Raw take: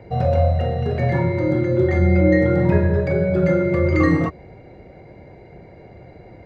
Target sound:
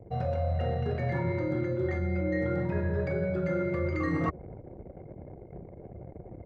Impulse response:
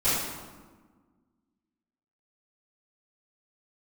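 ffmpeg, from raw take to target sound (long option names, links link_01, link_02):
-af "anlmdn=0.631,adynamicequalizer=threshold=0.00794:dfrequency=1400:dqfactor=1.8:tfrequency=1400:tqfactor=1.8:attack=5:release=100:ratio=0.375:range=2:mode=boostabove:tftype=bell,areverse,acompressor=threshold=-26dB:ratio=12,areverse"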